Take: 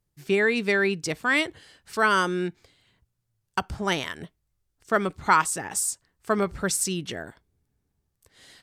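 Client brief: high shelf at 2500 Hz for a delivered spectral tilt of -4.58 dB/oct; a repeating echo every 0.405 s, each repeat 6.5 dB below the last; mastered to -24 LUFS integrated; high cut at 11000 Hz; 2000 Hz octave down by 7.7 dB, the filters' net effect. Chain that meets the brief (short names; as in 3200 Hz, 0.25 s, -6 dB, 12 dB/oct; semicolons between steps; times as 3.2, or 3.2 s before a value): LPF 11000 Hz; bell 2000 Hz -7.5 dB; high shelf 2500 Hz -7 dB; feedback echo 0.405 s, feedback 47%, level -6.5 dB; gain +4.5 dB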